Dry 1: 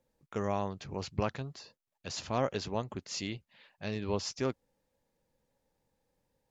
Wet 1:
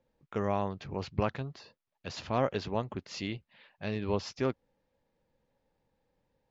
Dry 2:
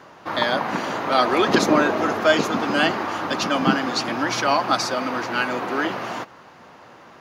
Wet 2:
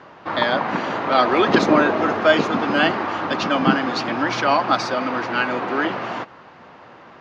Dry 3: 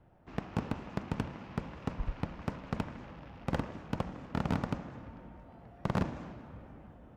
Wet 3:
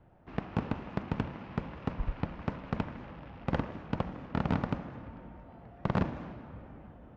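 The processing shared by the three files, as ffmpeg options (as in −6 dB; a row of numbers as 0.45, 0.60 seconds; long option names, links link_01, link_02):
-af "lowpass=3800,volume=2dB"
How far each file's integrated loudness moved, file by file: +1.5, +1.5, +2.0 LU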